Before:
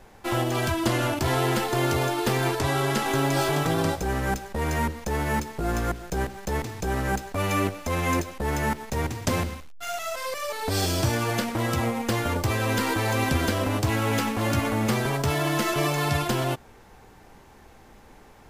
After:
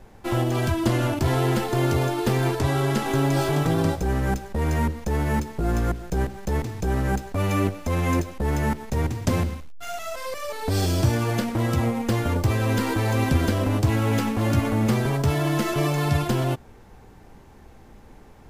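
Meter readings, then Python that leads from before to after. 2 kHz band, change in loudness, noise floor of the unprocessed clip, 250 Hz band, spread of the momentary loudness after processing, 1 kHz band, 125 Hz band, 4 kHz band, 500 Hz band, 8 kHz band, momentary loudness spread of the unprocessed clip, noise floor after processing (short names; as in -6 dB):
-2.5 dB, +2.0 dB, -51 dBFS, +3.0 dB, 5 LU, -1.5 dB, +5.0 dB, -3.0 dB, +1.0 dB, -3.0 dB, 6 LU, -48 dBFS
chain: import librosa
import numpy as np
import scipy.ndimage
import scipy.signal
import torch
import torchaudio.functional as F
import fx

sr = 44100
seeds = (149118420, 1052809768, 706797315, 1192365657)

y = fx.low_shelf(x, sr, hz=430.0, db=8.5)
y = F.gain(torch.from_numpy(y), -3.0).numpy()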